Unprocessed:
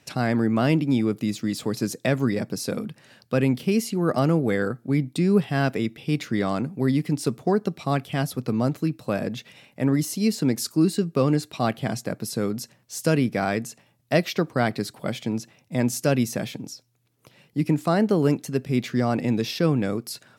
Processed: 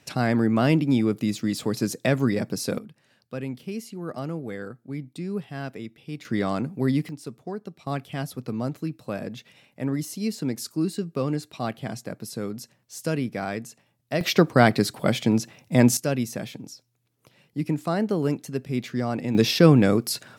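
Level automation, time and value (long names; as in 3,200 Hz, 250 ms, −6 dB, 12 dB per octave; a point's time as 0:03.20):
+0.5 dB
from 0:02.78 −11 dB
from 0:06.25 −1 dB
from 0:07.09 −12 dB
from 0:07.87 −5.5 dB
from 0:14.21 +6 dB
from 0:15.97 −4 dB
from 0:19.35 +6.5 dB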